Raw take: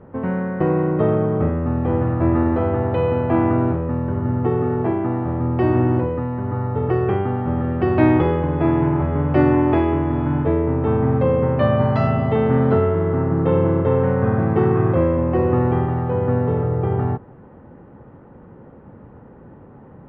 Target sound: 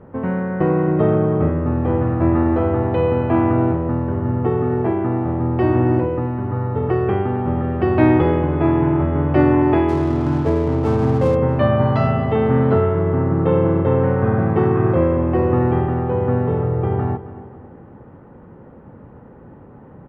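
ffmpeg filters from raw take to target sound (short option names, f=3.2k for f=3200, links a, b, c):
-filter_complex "[0:a]asplit=3[a][b][c];[a]afade=t=out:st=9.88:d=0.02[d];[b]adynamicsmooth=sensitivity=7:basefreq=580,afade=t=in:st=9.88:d=0.02,afade=t=out:st=11.34:d=0.02[e];[c]afade=t=in:st=11.34:d=0.02[f];[d][e][f]amix=inputs=3:normalize=0,asplit=2[g][h];[h]adelay=270,lowpass=f=3.1k:p=1,volume=-14dB,asplit=2[i][j];[j]adelay=270,lowpass=f=3.1k:p=1,volume=0.43,asplit=2[k][l];[l]adelay=270,lowpass=f=3.1k:p=1,volume=0.43,asplit=2[m][n];[n]adelay=270,lowpass=f=3.1k:p=1,volume=0.43[o];[g][i][k][m][o]amix=inputs=5:normalize=0,volume=1dB"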